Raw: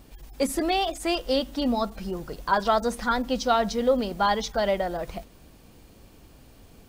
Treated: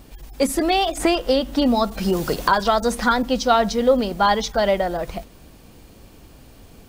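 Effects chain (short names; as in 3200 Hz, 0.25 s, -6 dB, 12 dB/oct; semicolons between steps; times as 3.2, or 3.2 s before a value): 0.97–3.23 three-band squash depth 100%; gain +5.5 dB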